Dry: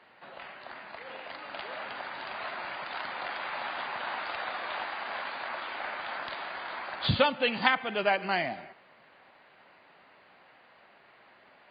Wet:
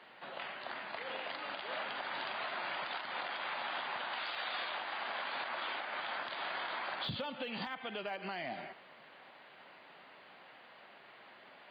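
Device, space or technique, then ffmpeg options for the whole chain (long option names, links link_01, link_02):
broadcast voice chain: -filter_complex "[0:a]asettb=1/sr,asplit=3[link_01][link_02][link_03];[link_01]atrim=end=4.134[link_04];[link_02]atrim=start=4.13:end=4.7,asetpts=PTS-STARTPTS,afade=type=in:duration=0.004:curve=qsin,afade=type=out:start_time=0.566:duration=0.004:curve=qsin,highshelf=frequency=2500:gain=10[link_05];[link_03]atrim=start=4.696[link_06];[link_04][link_05]acrossfade=duration=0.004:curve1=hsin:curve2=qsin[link_07];[link_07][link_06]acrossfade=duration=0.004:curve1=qsin:curve2=hsin,highpass=120,deesser=1,acompressor=threshold=-35dB:ratio=4,equalizer=frequency=3300:width_type=o:width=0.41:gain=5,alimiter=level_in=6dB:limit=-24dB:level=0:latency=1:release=161,volume=-6dB,volume=1dB"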